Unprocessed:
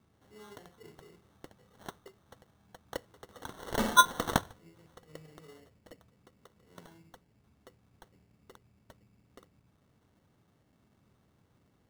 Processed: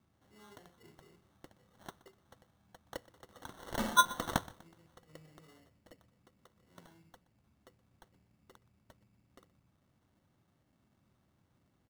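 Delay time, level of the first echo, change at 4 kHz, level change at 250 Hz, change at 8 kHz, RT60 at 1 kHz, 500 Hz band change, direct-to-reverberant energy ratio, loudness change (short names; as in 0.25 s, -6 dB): 0.123 s, -20.5 dB, -4.5 dB, -4.5 dB, -4.5 dB, none, -6.0 dB, none, -4.5 dB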